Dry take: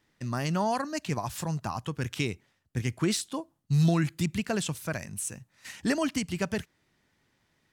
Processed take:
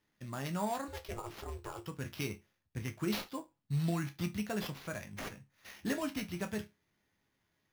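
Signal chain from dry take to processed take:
0:00.88–0:01.83: ring modulation 230 Hz
resonators tuned to a chord C#2 major, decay 0.21 s
sample-rate reduction 8,300 Hz, jitter 0%
level +1 dB

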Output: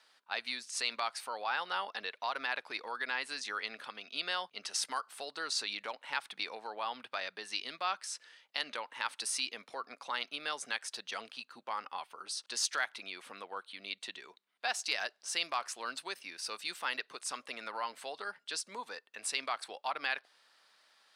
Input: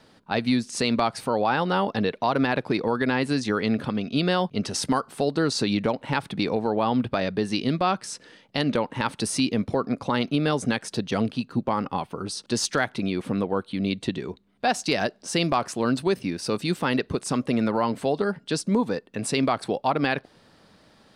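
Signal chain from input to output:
high-pass filter 1,200 Hz 12 dB per octave
level −5.5 dB

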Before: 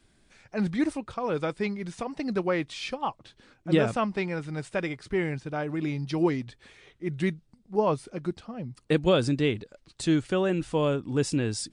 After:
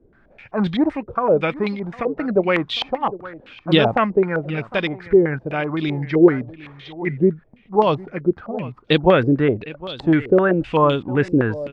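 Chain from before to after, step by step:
single-tap delay 757 ms −18 dB
low-pass on a step sequencer 7.8 Hz 460–3,500 Hz
level +6.5 dB

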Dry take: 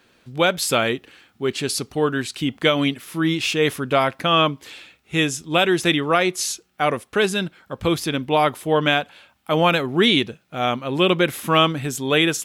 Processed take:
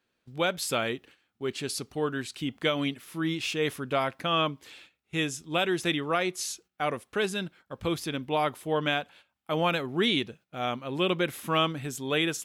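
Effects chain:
noise gate −43 dBFS, range −11 dB
level −9 dB

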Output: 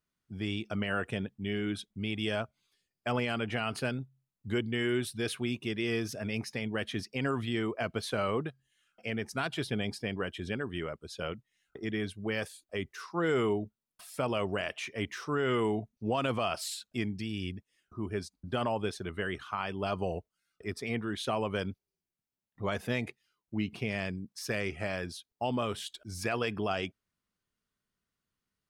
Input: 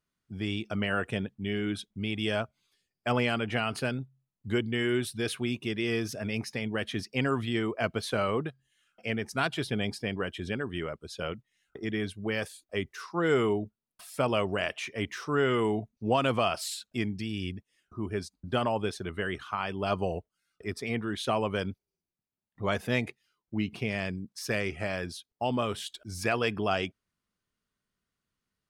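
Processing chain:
brickwall limiter −18 dBFS, peak gain reduction 4.5 dB
level −2 dB

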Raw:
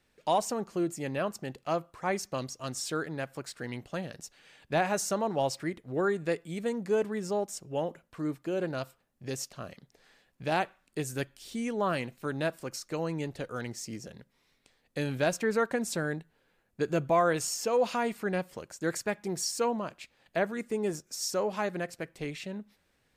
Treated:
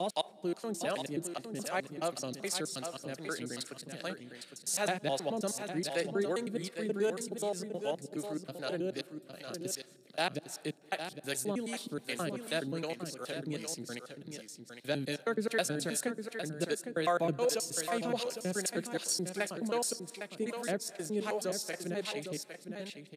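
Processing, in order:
slices reordered back to front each 106 ms, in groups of 4
graphic EQ with 15 bands 1,000 Hz −7 dB, 4,000 Hz +9 dB, 10,000 Hz +10 dB
single-tap delay 808 ms −8 dB
on a send at −20 dB: convolution reverb RT60 1.3 s, pre-delay 175 ms
on the sum: two-band tremolo in antiphase 2.6 Hz, depth 70%, crossover 450 Hz
high-pass filter 150 Hz 24 dB per octave
parametric band 6,100 Hz −2.5 dB 1.4 octaves

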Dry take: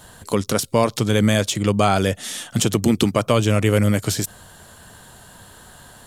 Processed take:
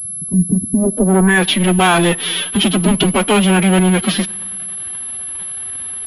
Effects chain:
leveller curve on the samples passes 3
in parallel at −4.5 dB: hard clipping −15 dBFS, distortion −8 dB
on the sum: low-pass filter sweep 190 Hz → 3,100 Hz, 0:00.72–0:01.48
phase-vocoder pitch shift with formants kept +10 semitones
on a send at −22.5 dB: convolution reverb RT60 1.4 s, pre-delay 3 ms
on the sum: switching amplifier with a slow clock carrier 11,000 Hz
level −4.5 dB

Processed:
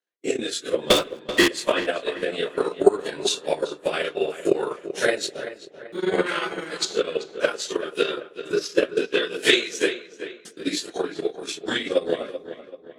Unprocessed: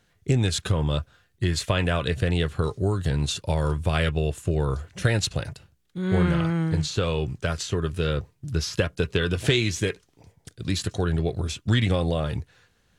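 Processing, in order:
random phases in long frames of 100 ms
noise gate −49 dBFS, range −22 dB
high-pass filter 310 Hz 24 dB per octave
0:00.90–0:01.48: leveller curve on the samples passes 5
0:06.26–0:06.85: tilt shelving filter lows −8 dB, about 730 Hz
0:10.94–0:11.57: downward compressor 2 to 1, threshold −31 dBFS, peak gain reduction 5.5 dB
transient designer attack +12 dB, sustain −10 dB
rotating-speaker cabinet horn 0.6 Hz
feedback echo with a low-pass in the loop 385 ms, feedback 44%, low-pass 3,100 Hz, level −12 dB
on a send at −24 dB: convolution reverb, pre-delay 52 ms
on the sum: level +2.5 dB

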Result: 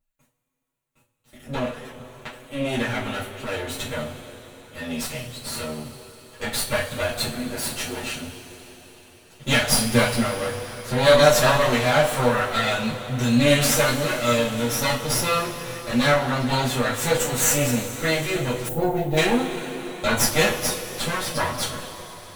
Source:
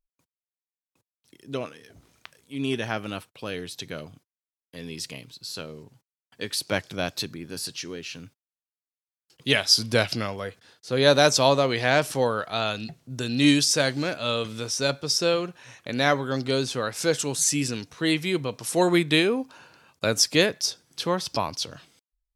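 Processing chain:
lower of the sound and its delayed copy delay 8.2 ms
parametric band 5,100 Hz −10 dB 0.44 octaves
in parallel at −1 dB: downward compressor, threshold −35 dBFS, peak gain reduction 18 dB
on the sum: coupled-rooms reverb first 0.29 s, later 4.8 s, from −20 dB, DRR −9 dB
gain on a spectral selection 0:18.69–0:19.17, 910–12,000 Hz −17 dB
level −4.5 dB

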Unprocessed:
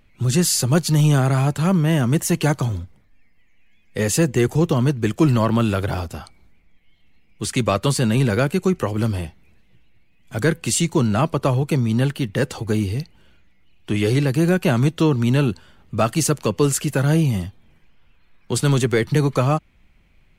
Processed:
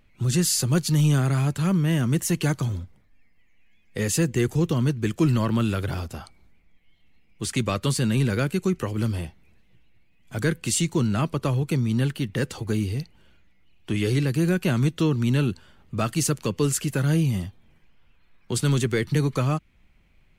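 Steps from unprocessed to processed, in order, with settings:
dynamic equaliser 730 Hz, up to −7 dB, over −34 dBFS, Q 1.1
level −3.5 dB

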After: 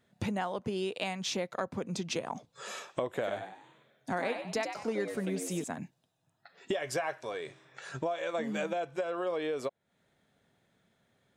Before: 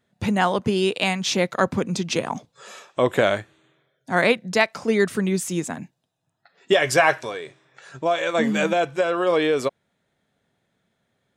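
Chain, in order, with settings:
dynamic equaliser 630 Hz, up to +5 dB, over −33 dBFS, Q 1
downward compressor 5 to 1, threshold −33 dBFS, peak gain reduction 22 dB
0:03.10–0:05.64: echo with shifted repeats 96 ms, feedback 40%, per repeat +81 Hz, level −7 dB

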